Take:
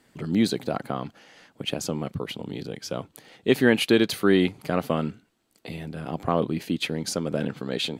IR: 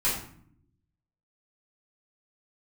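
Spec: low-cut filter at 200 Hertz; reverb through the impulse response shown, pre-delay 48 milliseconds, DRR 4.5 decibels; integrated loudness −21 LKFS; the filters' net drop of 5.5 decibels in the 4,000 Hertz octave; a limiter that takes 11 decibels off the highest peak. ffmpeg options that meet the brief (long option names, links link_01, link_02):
-filter_complex "[0:a]highpass=200,equalizer=frequency=4000:width_type=o:gain=-7.5,alimiter=limit=-17.5dB:level=0:latency=1,asplit=2[link_01][link_02];[1:a]atrim=start_sample=2205,adelay=48[link_03];[link_02][link_03]afir=irnorm=-1:irlink=0,volume=-14.5dB[link_04];[link_01][link_04]amix=inputs=2:normalize=0,volume=9dB"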